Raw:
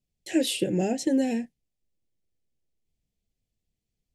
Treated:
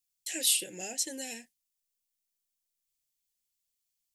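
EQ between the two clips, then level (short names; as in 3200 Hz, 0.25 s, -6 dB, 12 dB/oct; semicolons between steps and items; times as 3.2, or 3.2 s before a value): pre-emphasis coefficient 0.97; bell 150 Hz -2.5 dB 2.4 oct; +7.0 dB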